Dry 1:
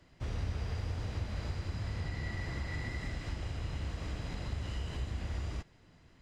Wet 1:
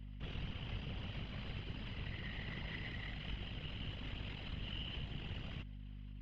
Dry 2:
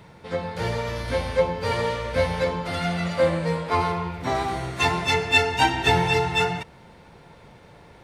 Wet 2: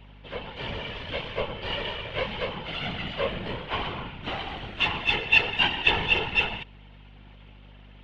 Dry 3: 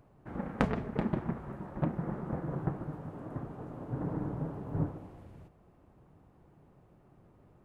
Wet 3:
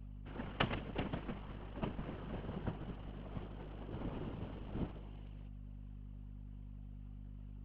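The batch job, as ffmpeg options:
ffmpeg -i in.wav -filter_complex "[0:a]aeval=exprs='if(lt(val(0),0),0.251*val(0),val(0))':channel_layout=same,afftfilt=real='hypot(re,im)*cos(2*PI*random(0))':imag='hypot(re,im)*sin(2*PI*random(1))':win_size=512:overlap=0.75,acrossover=split=110|1400[link_01][link_02][link_03];[link_01]aeval=exprs='val(0)*gte(abs(val(0)),0.00141)':channel_layout=same[link_04];[link_04][link_02][link_03]amix=inputs=3:normalize=0,aeval=exprs='val(0)+0.00398*(sin(2*PI*50*n/s)+sin(2*PI*2*50*n/s)/2+sin(2*PI*3*50*n/s)/3+sin(2*PI*4*50*n/s)/4+sin(2*PI*5*50*n/s)/5)':channel_layout=same,lowpass=frequency=3000:width_type=q:width=6.2" out.wav

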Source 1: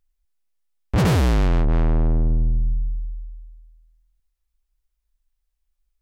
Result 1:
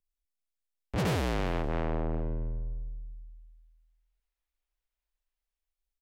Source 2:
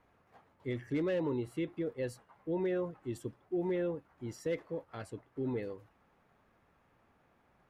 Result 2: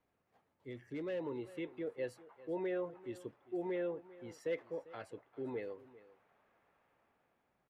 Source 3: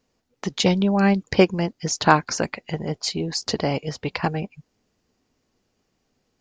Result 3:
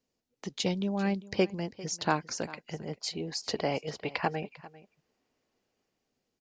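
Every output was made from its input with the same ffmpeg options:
ffmpeg -i in.wav -filter_complex "[0:a]lowshelf=frequency=120:gain=-7.5,aecho=1:1:397:0.112,acrossover=split=450|3000[link_01][link_02][link_03];[link_02]dynaudnorm=framelen=220:gausssize=11:maxgain=12dB[link_04];[link_01][link_04][link_03]amix=inputs=3:normalize=0,equalizer=frequency=1200:width=0.8:gain=-5.5,volume=-9dB" out.wav

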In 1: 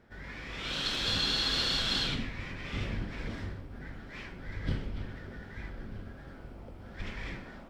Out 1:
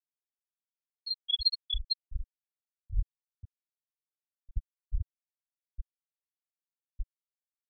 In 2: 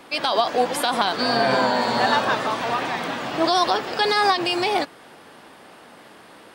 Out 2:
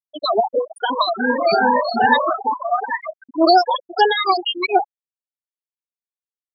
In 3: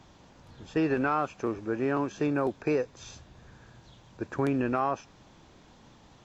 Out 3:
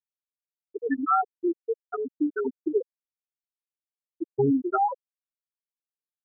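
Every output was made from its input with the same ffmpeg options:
ffmpeg -i in.wav -af "afftfilt=real='re*pow(10,24/40*sin(2*PI*(1.1*log(max(b,1)*sr/1024/100)/log(2)-(2.5)*(pts-256)/sr)))':imag='im*pow(10,24/40*sin(2*PI*(1.1*log(max(b,1)*sr/1024/100)/log(2)-(2.5)*(pts-256)/sr)))':win_size=1024:overlap=0.75,afftfilt=real='re*gte(hypot(re,im),0.501)':imag='im*gte(hypot(re,im),0.501)':win_size=1024:overlap=0.75,volume=-1dB" out.wav

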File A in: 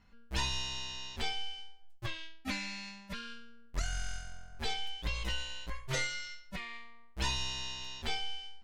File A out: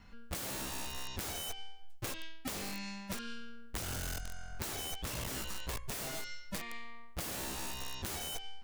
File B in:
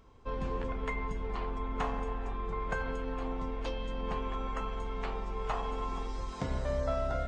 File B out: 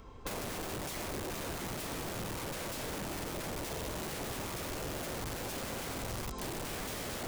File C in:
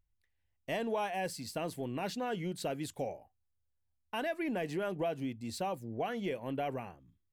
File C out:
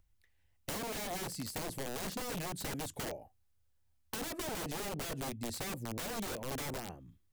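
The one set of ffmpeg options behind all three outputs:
ffmpeg -i in.wav -filter_complex "[0:a]aeval=exprs='(mod(50.1*val(0)+1,2)-1)/50.1':channel_layout=same,acrossover=split=670|2000|6000[link_01][link_02][link_03][link_04];[link_01]acompressor=threshold=-46dB:ratio=4[link_05];[link_02]acompressor=threshold=-58dB:ratio=4[link_06];[link_03]acompressor=threshold=-58dB:ratio=4[link_07];[link_04]acompressor=threshold=-50dB:ratio=4[link_08];[link_05][link_06][link_07][link_08]amix=inputs=4:normalize=0,volume=7.5dB" out.wav

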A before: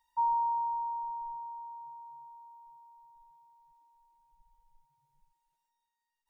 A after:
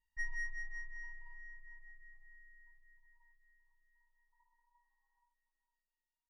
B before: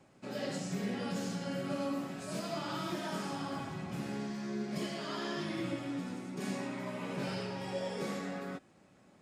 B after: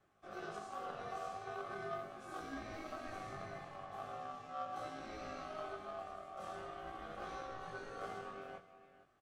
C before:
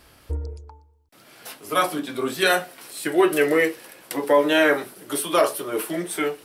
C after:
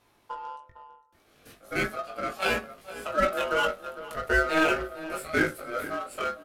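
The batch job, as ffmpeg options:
ffmpeg -i in.wav -filter_complex "[0:a]asplit=2[link_01][link_02];[link_02]adelay=454.8,volume=-12dB,highshelf=frequency=4000:gain=-10.2[link_03];[link_01][link_03]amix=inputs=2:normalize=0,aeval=exprs='val(0)*sin(2*PI*950*n/s)':channel_layout=same,flanger=delay=18.5:depth=2.4:speed=0.4,bass=frequency=250:gain=0,treble=frequency=4000:gain=-3,asplit=2[link_04][link_05];[link_05]adynamicsmooth=sensitivity=6:basefreq=540,volume=0.5dB[link_06];[link_04][link_06]amix=inputs=2:normalize=0,volume=-6.5dB" out.wav

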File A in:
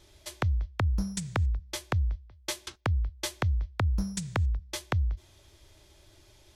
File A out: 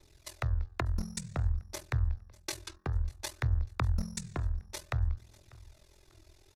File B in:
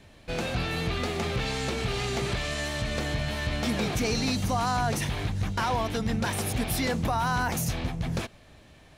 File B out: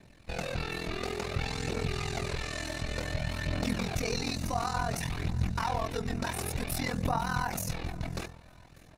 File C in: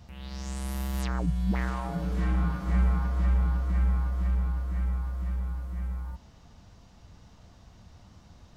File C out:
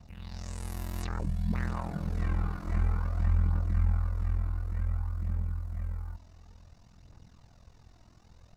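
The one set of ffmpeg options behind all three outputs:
ffmpeg -i in.wav -af "bandreject=frequency=3200:width=8,bandreject=frequency=84.16:width_type=h:width=4,bandreject=frequency=168.32:width_type=h:width=4,bandreject=frequency=252.48:width_type=h:width=4,bandreject=frequency=336.64:width_type=h:width=4,bandreject=frequency=420.8:width_type=h:width=4,bandreject=frequency=504.96:width_type=h:width=4,bandreject=frequency=589.12:width_type=h:width=4,bandreject=frequency=673.28:width_type=h:width=4,bandreject=frequency=757.44:width_type=h:width=4,bandreject=frequency=841.6:width_type=h:width=4,bandreject=frequency=925.76:width_type=h:width=4,bandreject=frequency=1009.92:width_type=h:width=4,bandreject=frequency=1094.08:width_type=h:width=4,bandreject=frequency=1178.24:width_type=h:width=4,bandreject=frequency=1262.4:width_type=h:width=4,bandreject=frequency=1346.56:width_type=h:width=4,bandreject=frequency=1430.72:width_type=h:width=4,bandreject=frequency=1514.88:width_type=h:width=4,bandreject=frequency=1599.04:width_type=h:width=4,bandreject=frequency=1683.2:width_type=h:width=4,bandreject=frequency=1767.36:width_type=h:width=4,bandreject=frequency=1851.52:width_type=h:width=4,aeval=exprs='val(0)*sin(2*PI*21*n/s)':channel_layout=same,aphaser=in_gain=1:out_gain=1:delay=3.2:decay=0.36:speed=0.56:type=triangular,aecho=1:1:594|1188|1782:0.0668|0.0267|0.0107,volume=-2dB" out.wav

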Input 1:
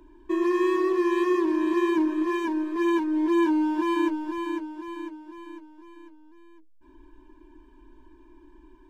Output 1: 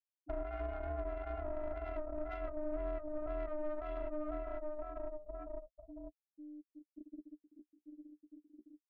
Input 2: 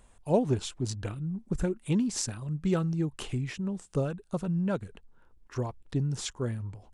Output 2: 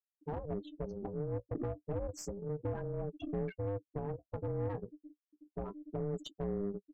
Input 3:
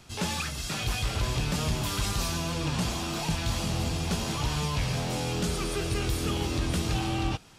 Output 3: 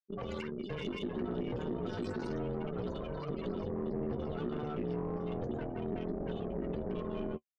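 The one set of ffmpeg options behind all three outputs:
ffmpeg -i in.wav -filter_complex "[0:a]afftfilt=real='re*gte(hypot(re,im),0.0501)':imag='im*gte(hypot(re,im),0.0501)':win_size=1024:overlap=0.75,equalizer=frequency=6000:width_type=o:width=1.2:gain=-10.5,acompressor=threshold=-32dB:ratio=2.5,flanger=delay=7.9:depth=8.5:regen=23:speed=0.31:shape=sinusoidal,acrossover=split=210[link_01][link_02];[link_02]acompressor=threshold=-45dB:ratio=8[link_03];[link_01][link_03]amix=inputs=2:normalize=0,aeval=exprs='(tanh(89.1*val(0)+0.4)-tanh(0.4))/89.1':channel_layout=same,aeval=exprs='val(0)*sin(2*PI*300*n/s)':channel_layout=same,aeval=exprs='0.0158*(cos(1*acos(clip(val(0)/0.0158,-1,1)))-cos(1*PI/2))+0.000631*(cos(6*acos(clip(val(0)/0.0158,-1,1)))-cos(6*PI/2))':channel_layout=same,volume=9dB" out.wav

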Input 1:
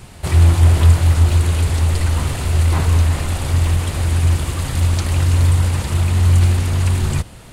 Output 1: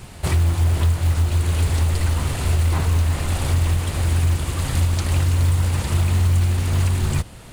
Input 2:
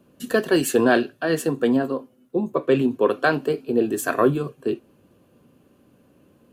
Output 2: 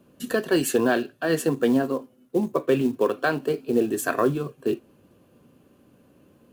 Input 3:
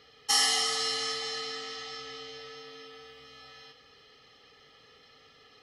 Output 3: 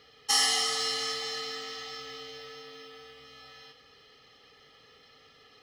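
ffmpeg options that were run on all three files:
ffmpeg -i in.wav -af "alimiter=limit=-10.5dB:level=0:latency=1:release=493,acrusher=bits=7:mode=log:mix=0:aa=0.000001" out.wav

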